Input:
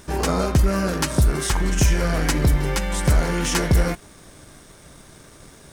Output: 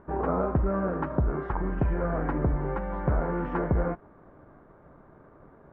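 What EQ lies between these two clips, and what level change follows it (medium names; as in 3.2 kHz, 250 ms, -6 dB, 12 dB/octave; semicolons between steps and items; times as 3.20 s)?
low-pass 1.3 kHz 24 dB/octave; bass shelf 200 Hz -7.5 dB; -2.5 dB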